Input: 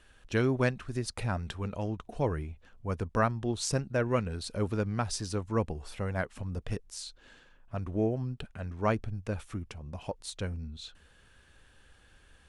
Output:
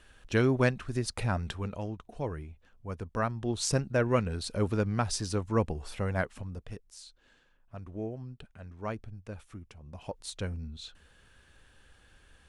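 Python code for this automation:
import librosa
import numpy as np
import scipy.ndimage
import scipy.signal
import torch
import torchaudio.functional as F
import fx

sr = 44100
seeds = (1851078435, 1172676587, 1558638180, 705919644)

y = fx.gain(x, sr, db=fx.line((1.48, 2.0), (2.03, -5.0), (3.11, -5.0), (3.65, 2.0), (6.23, 2.0), (6.71, -8.0), (9.71, -8.0), (10.25, 0.0)))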